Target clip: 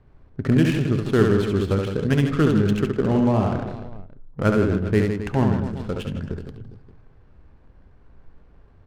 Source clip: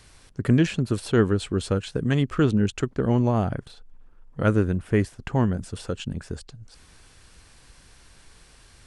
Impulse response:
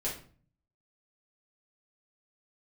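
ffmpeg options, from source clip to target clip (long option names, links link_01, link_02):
-filter_complex "[0:a]aecho=1:1:70|157.5|266.9|403.6|574.5:0.631|0.398|0.251|0.158|0.1,adynamicsmooth=sensitivity=6.5:basefreq=690,asplit=2[link_01][link_02];[1:a]atrim=start_sample=2205[link_03];[link_02][link_03]afir=irnorm=-1:irlink=0,volume=-17dB[link_04];[link_01][link_04]amix=inputs=2:normalize=0"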